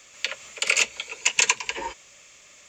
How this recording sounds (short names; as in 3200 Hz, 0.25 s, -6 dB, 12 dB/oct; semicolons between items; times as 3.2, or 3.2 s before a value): noise floor -52 dBFS; spectral tilt +2.5 dB/oct